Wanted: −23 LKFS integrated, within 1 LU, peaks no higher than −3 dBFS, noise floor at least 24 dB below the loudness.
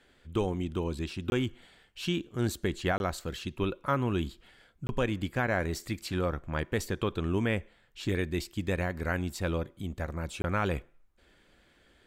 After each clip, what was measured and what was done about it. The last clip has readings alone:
number of dropouts 4; longest dropout 21 ms; integrated loudness −32.5 LKFS; sample peak −17.0 dBFS; target loudness −23.0 LKFS
→ repair the gap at 0:01.30/0:02.98/0:04.87/0:10.42, 21 ms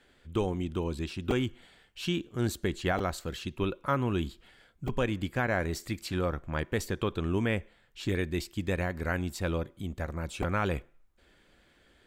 number of dropouts 0; integrated loudness −32.5 LKFS; sample peak −14.5 dBFS; target loudness −23.0 LKFS
→ level +9.5 dB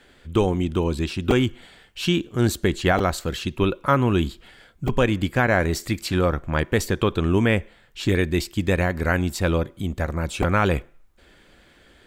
integrated loudness −23.0 LKFS; sample peak −5.0 dBFS; background noise floor −55 dBFS

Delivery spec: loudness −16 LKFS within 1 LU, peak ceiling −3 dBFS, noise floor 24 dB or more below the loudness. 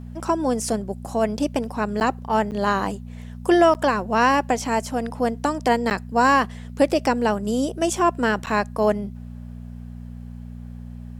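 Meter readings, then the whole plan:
number of dropouts 5; longest dropout 9.1 ms; mains hum 60 Hz; hum harmonics up to 240 Hz; level of the hum −34 dBFS; integrated loudness −22.0 LKFS; sample peak −6.5 dBFS; target loudness −16.0 LKFS
→ repair the gap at 0:02.00/0:02.51/0:03.74/0:05.90/0:08.46, 9.1 ms
hum removal 60 Hz, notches 4
level +6 dB
brickwall limiter −3 dBFS

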